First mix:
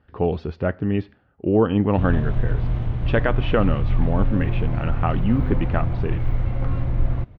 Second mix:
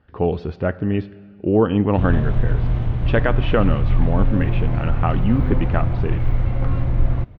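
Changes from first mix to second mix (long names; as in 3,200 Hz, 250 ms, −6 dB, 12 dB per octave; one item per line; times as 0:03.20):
background +3.0 dB
reverb: on, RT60 1.8 s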